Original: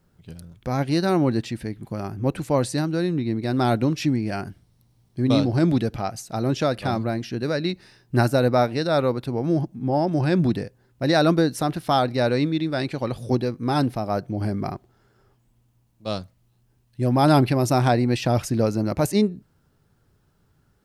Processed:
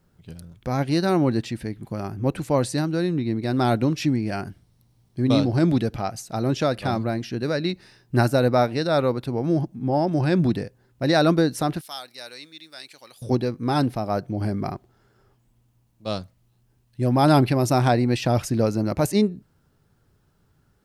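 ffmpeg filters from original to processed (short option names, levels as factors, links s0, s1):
-filter_complex "[0:a]asettb=1/sr,asplit=3[s0][s1][s2];[s0]atrim=end=11.814[s3];[s1]atrim=start=11.81:end=13.22,asetpts=PTS-STARTPTS,afade=t=in:d=0.004:c=qsin,afade=t=out:st=1.406:d=0.004:c=qsin,aderivative[s4];[s2]atrim=start=13.216[s5];[s3][s4]acrossfade=d=0.004:c1=hsin:c2=qsin[s6];[s6][s5]acrossfade=d=0.004:c1=qsin:c2=hsin"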